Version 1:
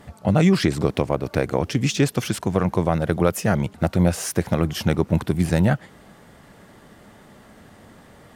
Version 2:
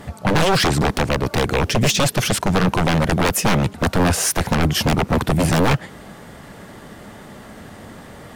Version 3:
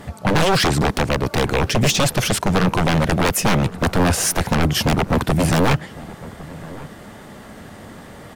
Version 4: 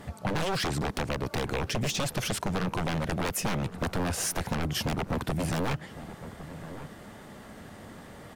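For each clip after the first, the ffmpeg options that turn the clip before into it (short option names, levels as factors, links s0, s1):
-af "aeval=exprs='0.106*(abs(mod(val(0)/0.106+3,4)-2)-1)':c=same,volume=2.82"
-filter_complex "[0:a]asplit=2[s0][s1];[s1]adelay=1108,volume=0.126,highshelf=f=4000:g=-24.9[s2];[s0][s2]amix=inputs=2:normalize=0"
-af "acompressor=threshold=0.112:ratio=6,volume=0.422"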